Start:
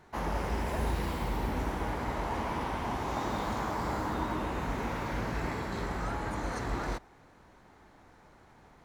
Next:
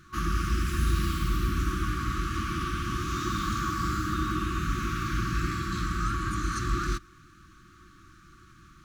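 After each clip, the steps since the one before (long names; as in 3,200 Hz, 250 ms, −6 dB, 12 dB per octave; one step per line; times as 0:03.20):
brick-wall band-stop 370–1,100 Hz
thirty-one-band graphic EQ 250 Hz −10 dB, 1,000 Hz +12 dB, 2,000 Hz −10 dB, 6,300 Hz +3 dB
level +7 dB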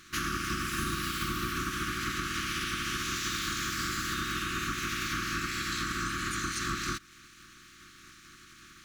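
ceiling on every frequency bin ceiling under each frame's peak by 21 dB
in parallel at −10 dB: bit reduction 7 bits
on the sum: downward compressor, threshold −30 dBFS, peak gain reduction 11.5 dB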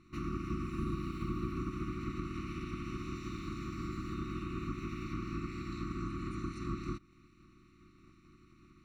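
moving average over 27 samples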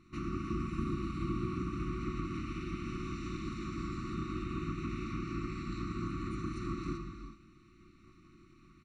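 convolution reverb, pre-delay 3 ms, DRR 5 dB
downsampling to 22,050 Hz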